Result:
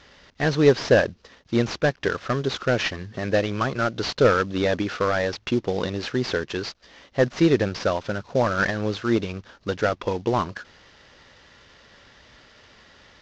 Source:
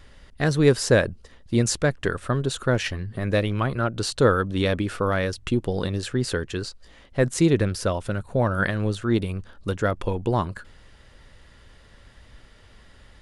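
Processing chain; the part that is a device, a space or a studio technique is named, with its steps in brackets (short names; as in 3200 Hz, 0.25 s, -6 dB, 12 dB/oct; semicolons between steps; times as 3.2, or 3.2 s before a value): early wireless headset (HPF 280 Hz 6 dB/oct; CVSD 32 kbps); gain +4 dB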